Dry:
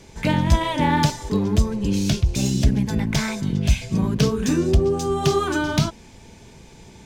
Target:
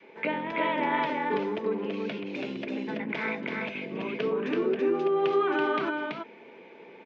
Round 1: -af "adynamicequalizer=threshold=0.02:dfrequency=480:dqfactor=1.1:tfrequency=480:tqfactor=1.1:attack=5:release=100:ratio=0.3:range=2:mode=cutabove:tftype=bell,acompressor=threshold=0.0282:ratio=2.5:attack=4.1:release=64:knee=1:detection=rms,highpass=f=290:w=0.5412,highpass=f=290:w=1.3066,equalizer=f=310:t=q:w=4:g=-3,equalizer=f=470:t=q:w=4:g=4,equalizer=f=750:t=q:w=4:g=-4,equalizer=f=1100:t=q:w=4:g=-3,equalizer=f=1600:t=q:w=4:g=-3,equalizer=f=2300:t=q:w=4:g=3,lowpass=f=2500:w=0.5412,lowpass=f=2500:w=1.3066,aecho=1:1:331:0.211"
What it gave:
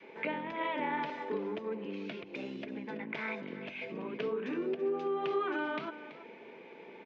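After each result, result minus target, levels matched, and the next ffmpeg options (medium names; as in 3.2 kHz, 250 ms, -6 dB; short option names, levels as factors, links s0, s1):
echo-to-direct -11 dB; compression: peak gain reduction +6 dB
-af "adynamicequalizer=threshold=0.02:dfrequency=480:dqfactor=1.1:tfrequency=480:tqfactor=1.1:attack=5:release=100:ratio=0.3:range=2:mode=cutabove:tftype=bell,acompressor=threshold=0.0282:ratio=2.5:attack=4.1:release=64:knee=1:detection=rms,highpass=f=290:w=0.5412,highpass=f=290:w=1.3066,equalizer=f=310:t=q:w=4:g=-3,equalizer=f=470:t=q:w=4:g=4,equalizer=f=750:t=q:w=4:g=-4,equalizer=f=1100:t=q:w=4:g=-3,equalizer=f=1600:t=q:w=4:g=-3,equalizer=f=2300:t=q:w=4:g=3,lowpass=f=2500:w=0.5412,lowpass=f=2500:w=1.3066,aecho=1:1:331:0.75"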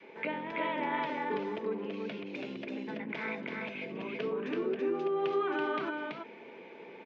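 compression: peak gain reduction +6 dB
-af "adynamicequalizer=threshold=0.02:dfrequency=480:dqfactor=1.1:tfrequency=480:tqfactor=1.1:attack=5:release=100:ratio=0.3:range=2:mode=cutabove:tftype=bell,acompressor=threshold=0.0891:ratio=2.5:attack=4.1:release=64:knee=1:detection=rms,highpass=f=290:w=0.5412,highpass=f=290:w=1.3066,equalizer=f=310:t=q:w=4:g=-3,equalizer=f=470:t=q:w=4:g=4,equalizer=f=750:t=q:w=4:g=-4,equalizer=f=1100:t=q:w=4:g=-3,equalizer=f=1600:t=q:w=4:g=-3,equalizer=f=2300:t=q:w=4:g=3,lowpass=f=2500:w=0.5412,lowpass=f=2500:w=1.3066,aecho=1:1:331:0.75"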